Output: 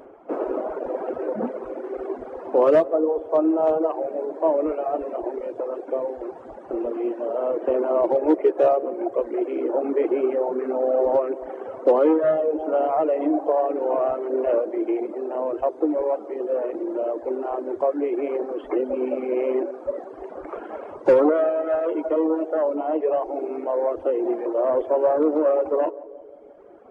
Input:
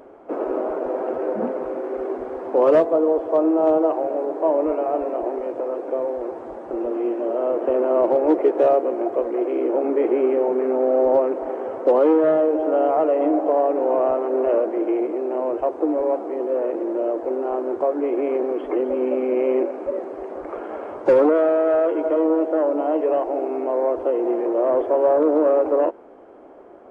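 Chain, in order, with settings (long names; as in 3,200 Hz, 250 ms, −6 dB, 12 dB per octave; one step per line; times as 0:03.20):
reverb reduction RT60 1.7 s
0:22.75–0:23.22: high-frequency loss of the air 140 metres
on a send: feedback echo with a band-pass in the loop 176 ms, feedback 67%, band-pass 430 Hz, level −17.5 dB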